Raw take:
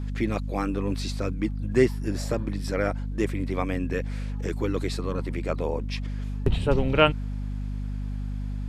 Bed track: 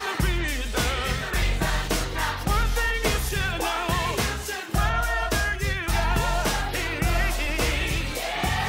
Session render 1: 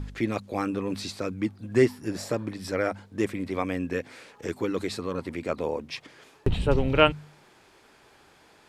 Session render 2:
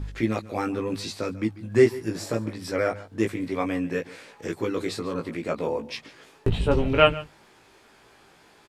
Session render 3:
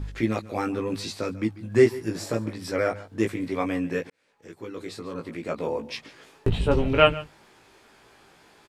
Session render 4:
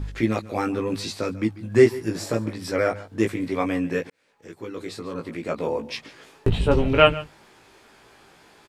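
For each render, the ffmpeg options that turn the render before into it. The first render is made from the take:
-af "bandreject=f=50:t=h:w=4,bandreject=f=100:t=h:w=4,bandreject=f=150:t=h:w=4,bandreject=f=200:t=h:w=4,bandreject=f=250:t=h:w=4"
-filter_complex "[0:a]asplit=2[s0][s1];[s1]adelay=18,volume=0.631[s2];[s0][s2]amix=inputs=2:normalize=0,aecho=1:1:143:0.119"
-filter_complex "[0:a]asplit=2[s0][s1];[s0]atrim=end=4.1,asetpts=PTS-STARTPTS,afade=t=out:st=4.096:d=0.004:c=hsin[s2];[s1]atrim=start=4.1,asetpts=PTS-STARTPTS,afade=t=in:d=1.8[s3];[s2][s3]concat=n=2:v=0:a=1"
-af "volume=1.33,alimiter=limit=0.794:level=0:latency=1"

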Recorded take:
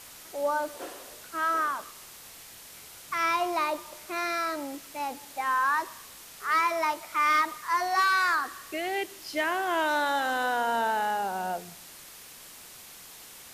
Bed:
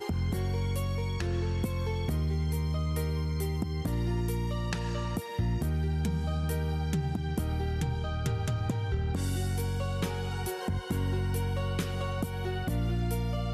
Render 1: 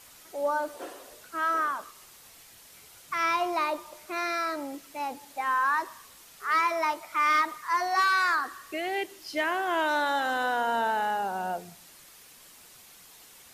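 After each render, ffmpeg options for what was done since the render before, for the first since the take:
-af "afftdn=nr=6:nf=-48"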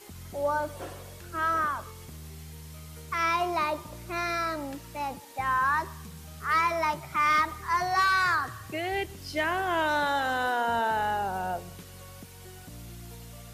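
-filter_complex "[1:a]volume=0.178[s0];[0:a][s0]amix=inputs=2:normalize=0"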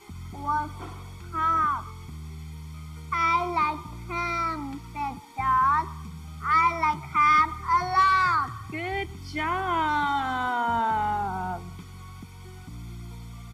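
-af "aemphasis=mode=reproduction:type=50kf,aecho=1:1:0.9:0.95"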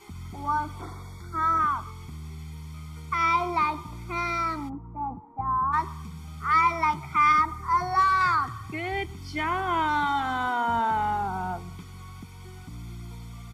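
-filter_complex "[0:a]asplit=3[s0][s1][s2];[s0]afade=t=out:st=0.81:d=0.02[s3];[s1]asuperstop=centerf=2800:order=20:qfactor=2.8,afade=t=in:st=0.81:d=0.02,afade=t=out:st=1.58:d=0.02[s4];[s2]afade=t=in:st=1.58:d=0.02[s5];[s3][s4][s5]amix=inputs=3:normalize=0,asplit=3[s6][s7][s8];[s6]afade=t=out:st=4.68:d=0.02[s9];[s7]lowpass=f=1000:w=0.5412,lowpass=f=1000:w=1.3066,afade=t=in:st=4.68:d=0.02,afade=t=out:st=5.72:d=0.02[s10];[s8]afade=t=in:st=5.72:d=0.02[s11];[s9][s10][s11]amix=inputs=3:normalize=0,asettb=1/sr,asplit=3[s12][s13][s14];[s12]atrim=end=7.324[s15];[s13]atrim=start=7.32:end=8.21,asetpts=PTS-STARTPTS,afade=t=in:d=0.004:c=qsin,afade=t=out:st=0.886:d=0.004:c=qsin,equalizer=f=3000:t=o:w=1.3:g=-7.5[s16];[s14]atrim=start=8.206[s17];[s15][s16]acrossfade=d=0.004:c1=hsin:c2=qsin[s18];[s18][s17]acrossfade=d=0.004:c1=qsin:c2=hsin"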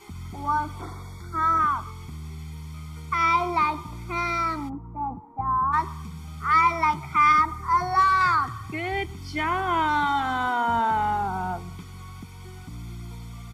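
-af "volume=1.26"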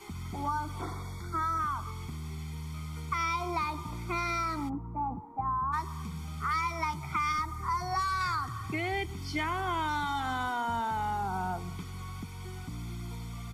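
-filter_complex "[0:a]acrossover=split=150|4000[s0][s1][s2];[s0]alimiter=level_in=4.47:limit=0.0631:level=0:latency=1,volume=0.224[s3];[s1]acompressor=threshold=0.0316:ratio=6[s4];[s3][s4][s2]amix=inputs=3:normalize=0"

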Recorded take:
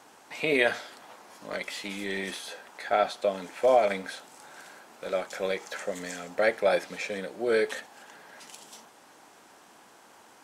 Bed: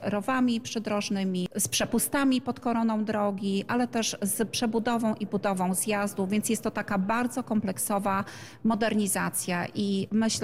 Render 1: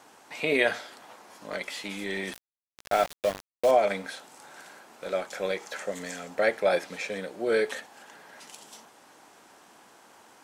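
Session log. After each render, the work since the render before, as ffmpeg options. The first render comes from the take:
-filter_complex "[0:a]asettb=1/sr,asplit=3[s0][s1][s2];[s0]atrim=end=2.334[s3];[s1]atrim=start=2.33:end=3.71,asetpts=PTS-STARTPTS,afade=t=in:d=0.004:c=qsin,afade=t=out:st=1.376:d=0.004:c=qsin,aeval=exprs='val(0)*gte(abs(val(0)),0.0335)':c=same[s4];[s2]atrim=start=3.706[s5];[s3][s4]acrossfade=d=0.004:c1=hsin:c2=qsin[s6];[s6][s5]acrossfade=d=0.004:c1=qsin:c2=hsin"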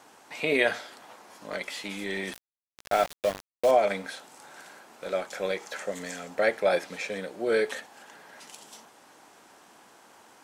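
-af anull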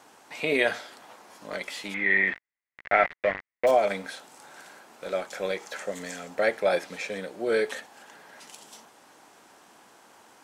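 -filter_complex "[0:a]asettb=1/sr,asplit=3[s0][s1][s2];[s0]atrim=end=1.944[s3];[s1]atrim=start=1.94:end=3.67,asetpts=PTS-STARTPTS,afade=t=in:d=0.004:c=qsin,afade=t=out:st=1.726:d=0.004:c=qsin,lowpass=f=2000:t=q:w=7.1[s4];[s2]atrim=start=3.666[s5];[s3][s4]acrossfade=d=0.004:c1=hsin:c2=qsin[s6];[s6][s5]acrossfade=d=0.004:c1=qsin:c2=hsin"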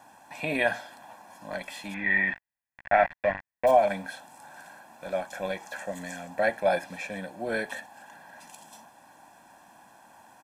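-af "equalizer=f=4400:t=o:w=2.2:g=-8,aecho=1:1:1.2:0.77"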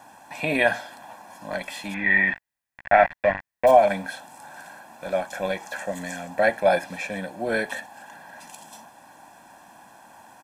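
-af "volume=1.78"

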